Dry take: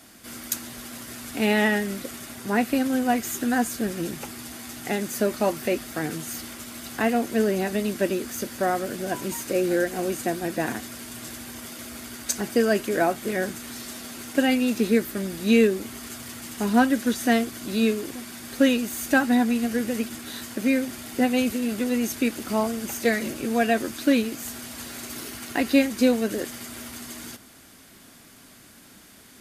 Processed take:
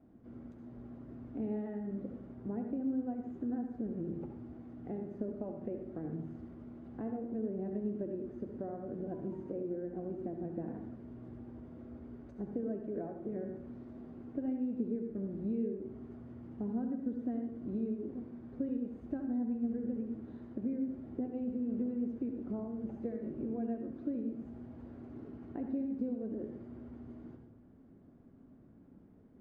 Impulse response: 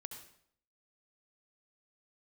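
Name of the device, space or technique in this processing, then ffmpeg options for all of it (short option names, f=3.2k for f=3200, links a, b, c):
television next door: -filter_complex "[0:a]acompressor=threshold=-28dB:ratio=5,lowpass=420[a];[1:a]atrim=start_sample=2205[b];[a][b]afir=irnorm=-1:irlink=0"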